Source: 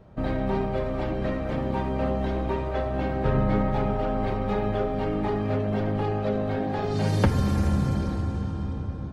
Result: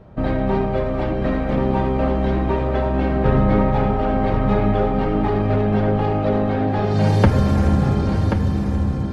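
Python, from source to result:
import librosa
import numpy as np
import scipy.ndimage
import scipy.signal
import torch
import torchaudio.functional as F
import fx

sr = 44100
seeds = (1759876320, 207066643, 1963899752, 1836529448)

y = fx.high_shelf(x, sr, hz=5200.0, db=-8.5)
y = y + 10.0 ** (-7.0 / 20.0) * np.pad(y, (int(1082 * sr / 1000.0), 0))[:len(y)]
y = F.gain(torch.from_numpy(y), 6.5).numpy()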